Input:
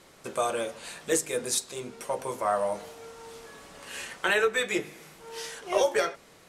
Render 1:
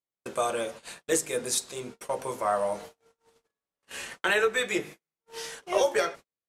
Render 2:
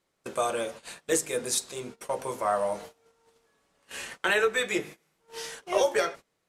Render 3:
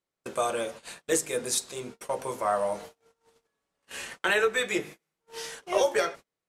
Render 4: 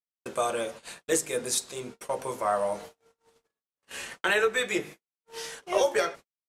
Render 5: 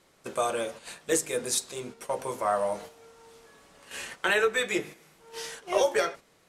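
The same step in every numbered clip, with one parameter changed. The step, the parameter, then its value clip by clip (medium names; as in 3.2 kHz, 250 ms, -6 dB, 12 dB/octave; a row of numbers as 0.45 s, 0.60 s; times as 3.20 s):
gate, range: -46 dB, -22 dB, -34 dB, -60 dB, -8 dB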